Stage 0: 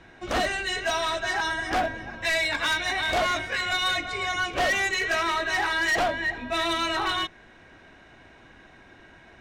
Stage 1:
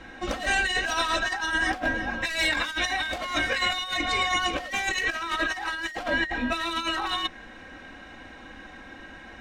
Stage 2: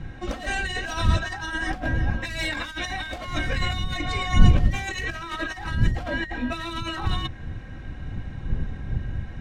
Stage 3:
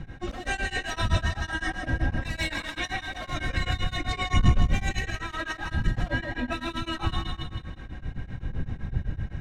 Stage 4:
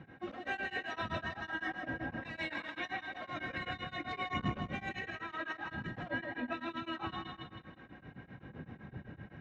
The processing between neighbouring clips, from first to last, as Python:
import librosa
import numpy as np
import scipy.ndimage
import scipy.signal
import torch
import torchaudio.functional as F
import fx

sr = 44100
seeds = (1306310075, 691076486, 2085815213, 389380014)

y1 = x + 0.6 * np.pad(x, (int(3.8 * sr / 1000.0), 0))[:len(x)]
y1 = fx.over_compress(y1, sr, threshold_db=-28.0, ratio=-0.5)
y1 = y1 * 10.0 ** (1.5 / 20.0)
y2 = fx.dmg_wind(y1, sr, seeds[0], corner_hz=100.0, level_db=-29.0)
y2 = fx.low_shelf(y2, sr, hz=320.0, db=9.0)
y2 = y2 * 10.0 ** (-4.5 / 20.0)
y3 = fx.echo_feedback(y2, sr, ms=161, feedback_pct=49, wet_db=-6.5)
y3 = 10.0 ** (-8.0 / 20.0) * np.tanh(y3 / 10.0 ** (-8.0 / 20.0))
y3 = y3 * np.abs(np.cos(np.pi * 7.8 * np.arange(len(y3)) / sr))
y4 = fx.bandpass_edges(y3, sr, low_hz=200.0, high_hz=2600.0)
y4 = y4 * 10.0 ** (-6.5 / 20.0)